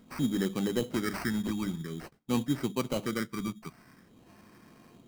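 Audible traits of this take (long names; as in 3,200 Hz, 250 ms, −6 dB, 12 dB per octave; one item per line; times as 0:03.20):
phaser sweep stages 6, 0.49 Hz, lowest notch 560–2,700 Hz
aliases and images of a low sample rate 3,500 Hz, jitter 0%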